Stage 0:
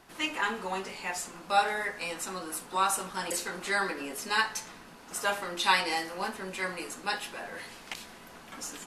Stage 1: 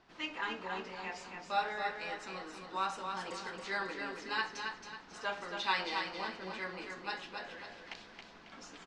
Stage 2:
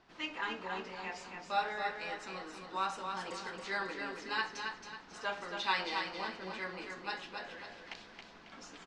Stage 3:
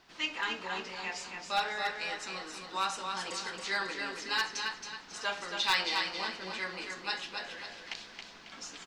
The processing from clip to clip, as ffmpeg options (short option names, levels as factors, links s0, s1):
-af "lowpass=f=5400:w=0.5412,lowpass=f=5400:w=1.3066,aecho=1:1:273|546|819|1092|1365:0.531|0.212|0.0849|0.034|0.0136,volume=0.398"
-af anull
-af "aeval=exprs='clip(val(0),-1,0.0531)':c=same,highshelf=f=2400:g=12"